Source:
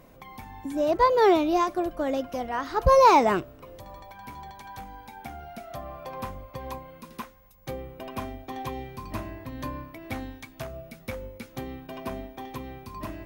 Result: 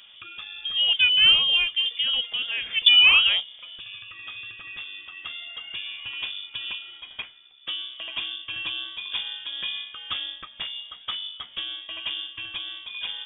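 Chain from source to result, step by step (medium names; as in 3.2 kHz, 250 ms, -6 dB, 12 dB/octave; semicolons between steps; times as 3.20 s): dynamic bell 1.5 kHz, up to -7 dB, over -39 dBFS, Q 1.1; frequency inversion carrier 3.5 kHz; trim +3 dB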